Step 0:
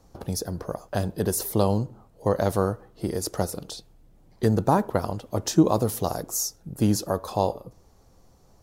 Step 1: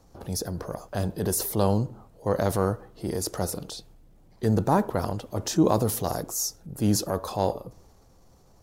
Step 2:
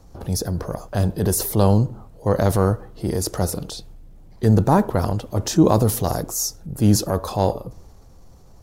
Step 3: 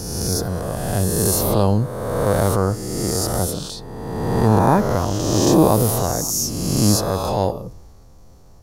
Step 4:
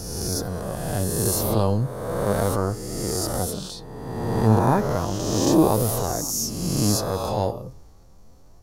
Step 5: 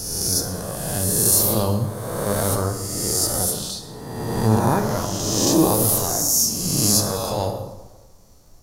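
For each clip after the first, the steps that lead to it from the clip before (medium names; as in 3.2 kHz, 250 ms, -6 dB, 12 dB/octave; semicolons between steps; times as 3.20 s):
transient shaper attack -5 dB, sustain +3 dB
bass shelf 130 Hz +8 dB; trim +4.5 dB
reverse spectral sustain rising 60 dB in 1.78 s; trim -2 dB
flange 0.34 Hz, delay 1.4 ms, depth 8.1 ms, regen +65%
treble shelf 3.4 kHz +11 dB; plate-style reverb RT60 1.2 s, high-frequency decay 0.7×, DRR 5.5 dB; trim -1.5 dB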